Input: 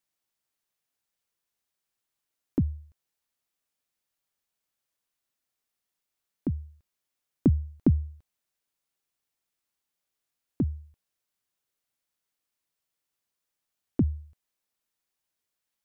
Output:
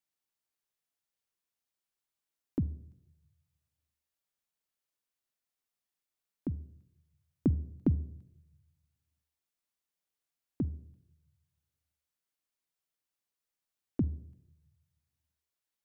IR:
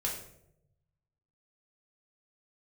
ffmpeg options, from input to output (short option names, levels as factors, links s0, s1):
-filter_complex "[0:a]asplit=2[s0][s1];[1:a]atrim=start_sample=2205,adelay=46[s2];[s1][s2]afir=irnorm=-1:irlink=0,volume=0.0794[s3];[s0][s3]amix=inputs=2:normalize=0,volume=0.501"